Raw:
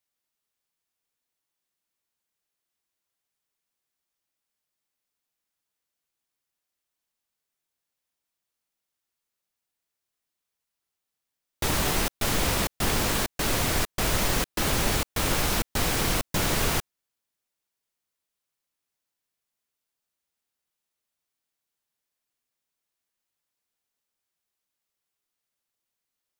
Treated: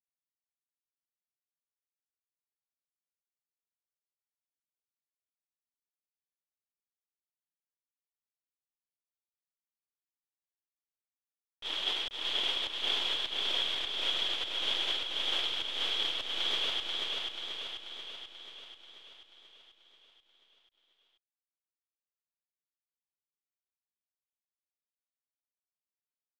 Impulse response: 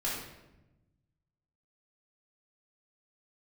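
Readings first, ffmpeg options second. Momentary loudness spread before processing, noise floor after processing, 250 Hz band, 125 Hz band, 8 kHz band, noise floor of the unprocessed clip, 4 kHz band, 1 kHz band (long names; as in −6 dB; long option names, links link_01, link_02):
2 LU, below −85 dBFS, −21.5 dB, below −30 dB, −21.5 dB, −85 dBFS, +3.0 dB, −13.0 dB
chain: -filter_complex "[0:a]highpass=frequency=330:width=0.5412,highpass=frequency=330:width=1.3066,agate=range=-22dB:threshold=-25dB:ratio=16:detection=peak,acrusher=bits=6:dc=4:mix=0:aa=0.000001,asoftclip=type=tanh:threshold=-33.5dB,crystalizer=i=1:c=0,lowpass=frequency=3300:width_type=q:width=14,asplit=2[link_01][link_02];[link_02]aecho=0:1:486|972|1458|1944|2430|2916|3402|3888|4374:0.708|0.418|0.246|0.145|0.0858|0.0506|0.0299|0.0176|0.0104[link_03];[link_01][link_03]amix=inputs=2:normalize=0"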